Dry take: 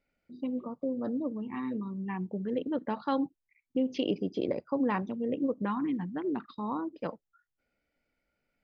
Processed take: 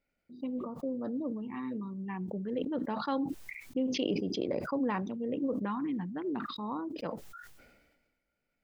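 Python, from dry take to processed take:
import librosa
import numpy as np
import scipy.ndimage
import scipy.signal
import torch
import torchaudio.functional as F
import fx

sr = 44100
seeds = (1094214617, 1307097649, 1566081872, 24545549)

y = fx.sustainer(x, sr, db_per_s=42.0)
y = y * 10.0 ** (-3.0 / 20.0)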